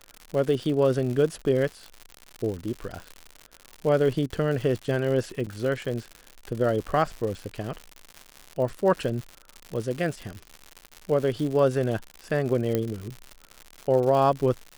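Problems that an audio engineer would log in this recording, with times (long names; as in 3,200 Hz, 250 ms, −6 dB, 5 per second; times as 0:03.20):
surface crackle 140 per second −31 dBFS
0:05.46–0:05.47: drop-out 6.4 ms
0:12.75: click −12 dBFS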